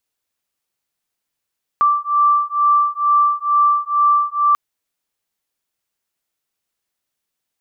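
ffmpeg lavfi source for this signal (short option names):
-f lavfi -i "aevalsrc='0.168*(sin(2*PI*1170*t)+sin(2*PI*1172.2*t))':d=2.74:s=44100"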